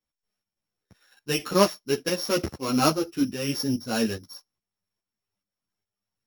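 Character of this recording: a buzz of ramps at a fixed pitch in blocks of 8 samples; tremolo saw up 2.4 Hz, depth 60%; a shimmering, thickened sound

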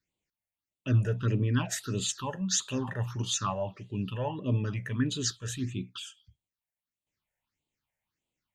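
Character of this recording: phasing stages 6, 1.6 Hz, lowest notch 290–1600 Hz

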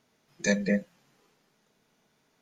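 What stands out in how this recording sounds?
noise floor -71 dBFS; spectral tilt -5.0 dB/oct

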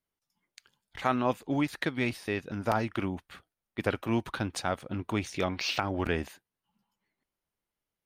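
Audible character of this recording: noise floor -90 dBFS; spectral tilt -4.5 dB/oct

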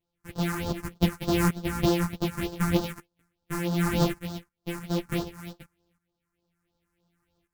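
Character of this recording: a buzz of ramps at a fixed pitch in blocks of 256 samples; phasing stages 4, 3.3 Hz, lowest notch 530–2200 Hz; tremolo saw up 0.67 Hz, depth 75%; a shimmering, thickened sound

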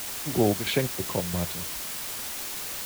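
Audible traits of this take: chopped level 3 Hz, depth 60%, duty 60%; a quantiser's noise floor 6-bit, dither triangular

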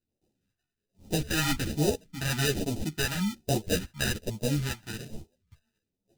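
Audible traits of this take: aliases and images of a low sample rate 1100 Hz, jitter 0%; phasing stages 2, 1.2 Hz, lowest notch 460–1500 Hz; tremolo saw up 1.9 Hz, depth 30%; a shimmering, thickened sound

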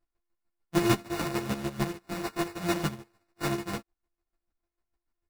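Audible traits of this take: a buzz of ramps at a fixed pitch in blocks of 128 samples; chopped level 6.7 Hz, depth 65%, duty 25%; aliases and images of a low sample rate 3200 Hz, jitter 0%; a shimmering, thickened sound

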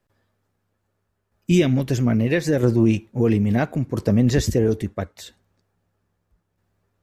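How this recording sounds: tremolo saw down 0.76 Hz, depth 45%

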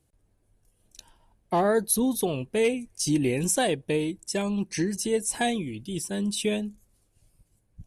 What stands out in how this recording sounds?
noise floor -70 dBFS; spectral tilt -4.0 dB/oct

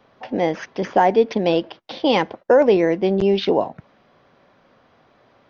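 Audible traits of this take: noise floor -57 dBFS; spectral tilt -4.5 dB/oct

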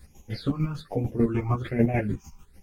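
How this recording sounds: phasing stages 8, 1.2 Hz, lowest notch 500–1400 Hz; chopped level 6.7 Hz, depth 60%, duty 35%; a shimmering, thickened sound

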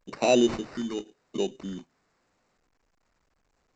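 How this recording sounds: phasing stages 2, 0.89 Hz, lowest notch 520–2900 Hz; aliases and images of a low sample rate 3300 Hz, jitter 0%; A-law

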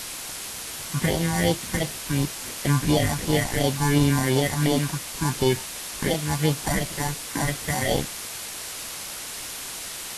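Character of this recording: aliases and images of a low sample rate 1300 Hz, jitter 0%; phasing stages 4, 2.8 Hz, lowest notch 470–1700 Hz; a quantiser's noise floor 6-bit, dither triangular; Vorbis

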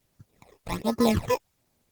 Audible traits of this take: aliases and images of a low sample rate 1500 Hz, jitter 0%; phasing stages 12, 1.3 Hz, lowest notch 210–3200 Hz; a quantiser's noise floor 12-bit, dither triangular; Opus

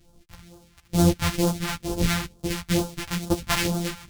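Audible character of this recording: a buzz of ramps at a fixed pitch in blocks of 256 samples; phasing stages 2, 2.2 Hz, lowest notch 380–2000 Hz; tremolo triangle 0.94 Hz, depth 40%; a shimmering, thickened sound

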